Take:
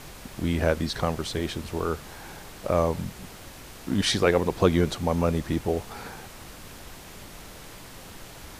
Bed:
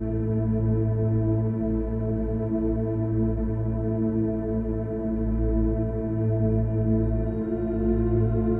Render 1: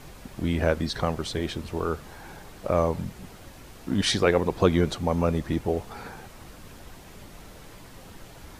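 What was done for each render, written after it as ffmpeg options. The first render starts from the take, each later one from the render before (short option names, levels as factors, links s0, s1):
-af "afftdn=nr=6:nf=-45"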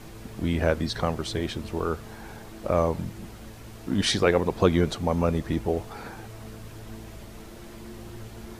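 -filter_complex "[1:a]volume=0.1[s0];[0:a][s0]amix=inputs=2:normalize=0"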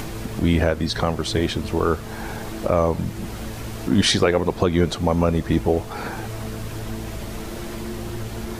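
-filter_complex "[0:a]asplit=2[s0][s1];[s1]acompressor=mode=upward:threshold=0.0398:ratio=2.5,volume=1.41[s2];[s0][s2]amix=inputs=2:normalize=0,alimiter=limit=0.531:level=0:latency=1:release=318"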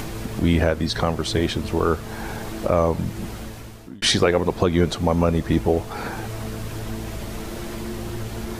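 -filter_complex "[0:a]asplit=2[s0][s1];[s0]atrim=end=4.02,asetpts=PTS-STARTPTS,afade=t=out:st=3.23:d=0.79[s2];[s1]atrim=start=4.02,asetpts=PTS-STARTPTS,afade=t=in:d=0.004:c=hsin[s3];[s2][s3]concat=n=2:v=0:a=1"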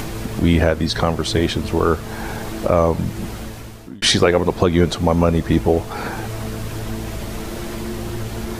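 -af "volume=1.5"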